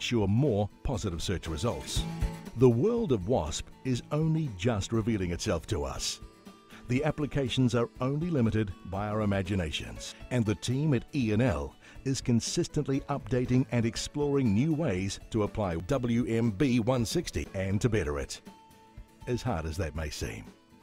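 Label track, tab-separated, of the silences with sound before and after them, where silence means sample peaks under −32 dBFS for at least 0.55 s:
6.140000	6.900000	silence
18.360000	19.280000	silence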